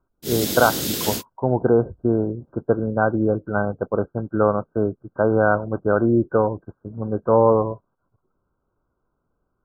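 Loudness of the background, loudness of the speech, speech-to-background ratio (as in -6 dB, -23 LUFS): -25.0 LUFS, -21.5 LUFS, 3.5 dB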